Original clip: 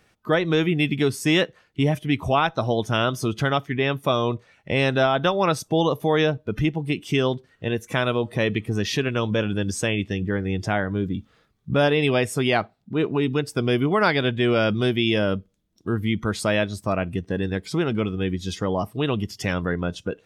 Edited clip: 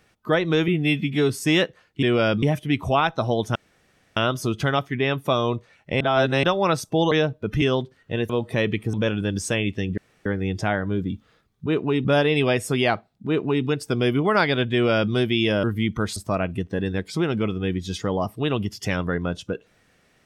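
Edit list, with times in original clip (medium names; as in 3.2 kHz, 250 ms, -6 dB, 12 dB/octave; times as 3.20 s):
0.68–1.09 s: stretch 1.5×
2.95 s: insert room tone 0.61 s
4.79–5.22 s: reverse
5.90–6.16 s: delete
6.66–7.14 s: delete
7.82–8.12 s: delete
8.76–9.26 s: delete
10.30 s: insert room tone 0.28 s
12.94–13.32 s: copy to 11.71 s
14.39–14.79 s: copy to 1.82 s
15.30–15.90 s: delete
16.43–16.74 s: delete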